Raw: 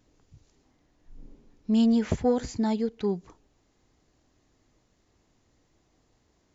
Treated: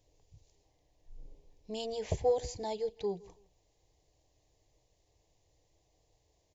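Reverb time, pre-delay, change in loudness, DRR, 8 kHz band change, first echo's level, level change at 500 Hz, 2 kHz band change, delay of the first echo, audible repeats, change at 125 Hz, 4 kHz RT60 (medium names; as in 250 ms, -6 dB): no reverb, no reverb, -9.0 dB, no reverb, no reading, -23.0 dB, -3.0 dB, -10.0 dB, 164 ms, 2, -7.5 dB, no reverb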